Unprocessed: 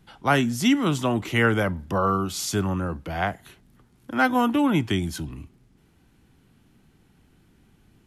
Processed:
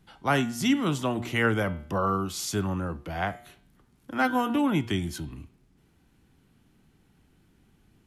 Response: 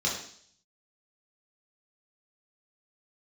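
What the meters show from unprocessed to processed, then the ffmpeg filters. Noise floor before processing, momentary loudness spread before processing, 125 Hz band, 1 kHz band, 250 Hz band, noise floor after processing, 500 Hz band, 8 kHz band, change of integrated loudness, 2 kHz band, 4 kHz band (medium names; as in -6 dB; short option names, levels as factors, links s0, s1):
-60 dBFS, 11 LU, -4.0 dB, -3.5 dB, -4.0 dB, -64 dBFS, -4.0 dB, -3.5 dB, -4.0 dB, -4.0 dB, -3.5 dB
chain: -af "bandreject=f=119.4:t=h:w=4,bandreject=f=238.8:t=h:w=4,bandreject=f=358.2:t=h:w=4,bandreject=f=477.6:t=h:w=4,bandreject=f=597:t=h:w=4,bandreject=f=716.4:t=h:w=4,bandreject=f=835.8:t=h:w=4,bandreject=f=955.2:t=h:w=4,bandreject=f=1074.6:t=h:w=4,bandreject=f=1194:t=h:w=4,bandreject=f=1313.4:t=h:w=4,bandreject=f=1432.8:t=h:w=4,bandreject=f=1552.2:t=h:w=4,bandreject=f=1671.6:t=h:w=4,bandreject=f=1791:t=h:w=4,bandreject=f=1910.4:t=h:w=4,bandreject=f=2029.8:t=h:w=4,bandreject=f=2149.2:t=h:w=4,bandreject=f=2268.6:t=h:w=4,bandreject=f=2388:t=h:w=4,bandreject=f=2507.4:t=h:w=4,bandreject=f=2626.8:t=h:w=4,bandreject=f=2746.2:t=h:w=4,bandreject=f=2865.6:t=h:w=4,bandreject=f=2985:t=h:w=4,bandreject=f=3104.4:t=h:w=4,bandreject=f=3223.8:t=h:w=4,bandreject=f=3343.2:t=h:w=4,bandreject=f=3462.6:t=h:w=4,bandreject=f=3582:t=h:w=4,bandreject=f=3701.4:t=h:w=4,bandreject=f=3820.8:t=h:w=4,bandreject=f=3940.2:t=h:w=4,bandreject=f=4059.6:t=h:w=4,bandreject=f=4179:t=h:w=4,bandreject=f=4298.4:t=h:w=4,bandreject=f=4417.8:t=h:w=4,bandreject=f=4537.2:t=h:w=4,volume=0.668"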